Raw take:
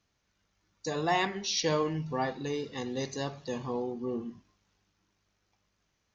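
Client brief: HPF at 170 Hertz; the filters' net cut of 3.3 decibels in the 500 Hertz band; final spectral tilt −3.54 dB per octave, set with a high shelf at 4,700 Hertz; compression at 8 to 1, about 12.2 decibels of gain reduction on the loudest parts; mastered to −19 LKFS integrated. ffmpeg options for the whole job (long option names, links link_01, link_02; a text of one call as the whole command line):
ffmpeg -i in.wav -af "highpass=170,equalizer=frequency=500:width_type=o:gain=-4,highshelf=frequency=4700:gain=4.5,acompressor=threshold=-37dB:ratio=8,volume=22.5dB" out.wav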